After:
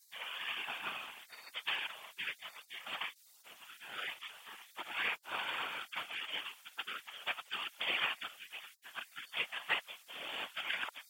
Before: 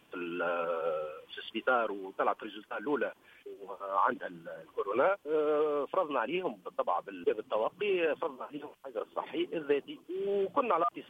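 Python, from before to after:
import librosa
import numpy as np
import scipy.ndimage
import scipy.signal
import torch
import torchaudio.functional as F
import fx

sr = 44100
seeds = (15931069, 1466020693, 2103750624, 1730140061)

y = fx.spec_gate(x, sr, threshold_db=-25, keep='weak')
y = fx.whisperise(y, sr, seeds[0])
y = fx.highpass(y, sr, hz=1500.0, slope=6)
y = y * librosa.db_to_amplitude(14.5)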